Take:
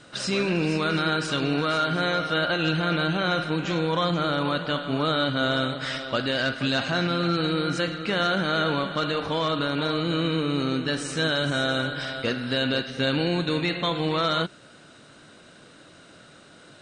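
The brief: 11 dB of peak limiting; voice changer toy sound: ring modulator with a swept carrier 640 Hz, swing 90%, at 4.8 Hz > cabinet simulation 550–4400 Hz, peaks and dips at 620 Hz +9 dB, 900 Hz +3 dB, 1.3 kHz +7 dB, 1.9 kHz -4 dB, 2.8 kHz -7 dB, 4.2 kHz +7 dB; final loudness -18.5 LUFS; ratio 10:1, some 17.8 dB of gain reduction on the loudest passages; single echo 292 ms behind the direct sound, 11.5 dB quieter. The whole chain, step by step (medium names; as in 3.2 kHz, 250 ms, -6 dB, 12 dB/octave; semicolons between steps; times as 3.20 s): compression 10:1, threshold -39 dBFS; peak limiter -39 dBFS; delay 292 ms -11.5 dB; ring modulator with a swept carrier 640 Hz, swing 90%, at 4.8 Hz; cabinet simulation 550–4400 Hz, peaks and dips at 620 Hz +9 dB, 900 Hz +3 dB, 1.3 kHz +7 dB, 1.9 kHz -4 dB, 2.8 kHz -7 dB, 4.2 kHz +7 dB; trim +30 dB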